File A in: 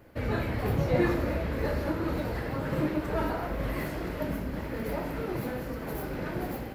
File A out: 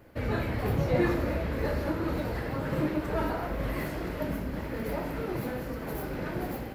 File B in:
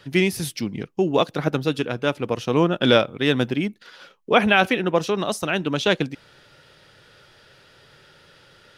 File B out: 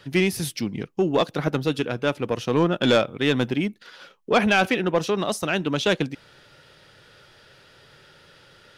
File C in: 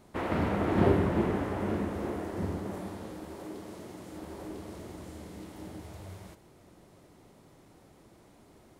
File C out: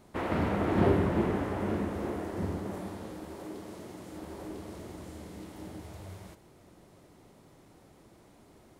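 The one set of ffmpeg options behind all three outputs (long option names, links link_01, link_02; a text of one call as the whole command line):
ffmpeg -i in.wav -af "asoftclip=type=tanh:threshold=-10.5dB" out.wav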